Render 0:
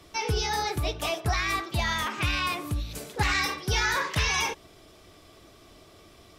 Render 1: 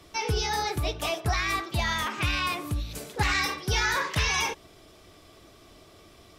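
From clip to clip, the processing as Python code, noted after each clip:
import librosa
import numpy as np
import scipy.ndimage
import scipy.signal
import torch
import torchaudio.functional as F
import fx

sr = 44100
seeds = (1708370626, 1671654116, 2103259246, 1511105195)

y = x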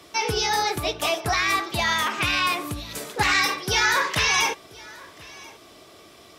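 y = fx.highpass(x, sr, hz=280.0, slope=6)
y = y + 10.0 ** (-22.5 / 20.0) * np.pad(y, (int(1033 * sr / 1000.0), 0))[:len(y)]
y = y * librosa.db_to_amplitude(6.0)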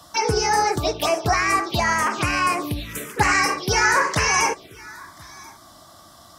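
y = fx.env_phaser(x, sr, low_hz=370.0, high_hz=3600.0, full_db=-20.5)
y = y * librosa.db_to_amplitude(5.5)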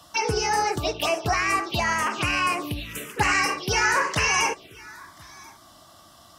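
y = fx.peak_eq(x, sr, hz=2800.0, db=9.5, octaves=0.29)
y = y * librosa.db_to_amplitude(-4.0)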